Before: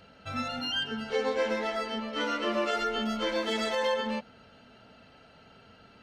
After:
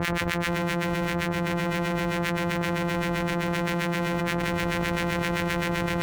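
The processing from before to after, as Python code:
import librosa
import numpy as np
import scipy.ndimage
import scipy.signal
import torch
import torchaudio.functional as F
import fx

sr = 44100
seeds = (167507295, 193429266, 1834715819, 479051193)

y = np.r_[np.sort(x[:len(x) // 256 * 256].reshape(-1, 256), axis=1).ravel(), x[len(x) // 256 * 256:]]
y = fx.peak_eq(y, sr, hz=2000.0, db=7.0, octaves=1.2)
y = fx.harmonic_tremolo(y, sr, hz=7.7, depth_pct=100, crossover_hz=1400.0)
y = fx.high_shelf(y, sr, hz=2800.0, db=-10.0)
y = fx.notch(y, sr, hz=4900.0, q=21.0)
y = y + 10.0 ** (-8.0 / 20.0) * np.pad(y, (int(211 * sr / 1000.0), 0))[:len(y)]
y = fx.env_flatten(y, sr, amount_pct=100)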